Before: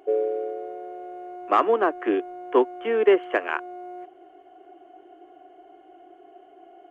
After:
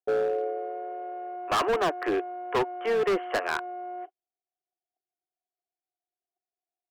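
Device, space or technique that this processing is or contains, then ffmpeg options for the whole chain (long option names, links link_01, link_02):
walkie-talkie: -af "highpass=510,lowpass=2300,asoftclip=type=hard:threshold=-25.5dB,agate=range=-52dB:threshold=-42dB:ratio=16:detection=peak,volume=4dB"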